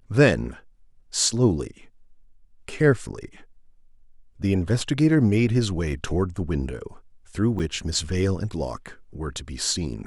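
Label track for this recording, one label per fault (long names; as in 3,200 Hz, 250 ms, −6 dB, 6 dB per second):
7.590000	7.600000	drop-out 7.1 ms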